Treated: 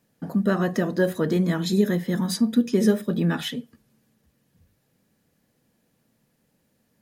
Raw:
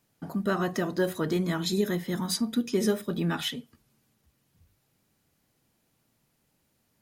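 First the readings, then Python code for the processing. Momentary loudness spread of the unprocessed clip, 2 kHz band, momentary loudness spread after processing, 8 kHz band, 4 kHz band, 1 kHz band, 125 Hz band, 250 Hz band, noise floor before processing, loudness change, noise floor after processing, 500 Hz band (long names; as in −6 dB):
5 LU, +3.5 dB, 6 LU, 0.0 dB, 0.0 dB, +1.0 dB, +6.5 dB, +7.0 dB, −73 dBFS, +5.5 dB, −70 dBFS, +4.5 dB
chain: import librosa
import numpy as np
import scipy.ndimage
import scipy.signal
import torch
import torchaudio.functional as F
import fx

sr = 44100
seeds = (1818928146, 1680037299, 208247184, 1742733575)

y = fx.small_body(x, sr, hz=(210.0, 490.0, 1700.0), ring_ms=20, db=8)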